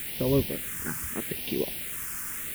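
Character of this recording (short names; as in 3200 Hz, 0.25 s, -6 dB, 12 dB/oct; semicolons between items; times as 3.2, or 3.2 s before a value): a quantiser's noise floor 6-bit, dither triangular; phasing stages 4, 0.8 Hz, lowest notch 640–1300 Hz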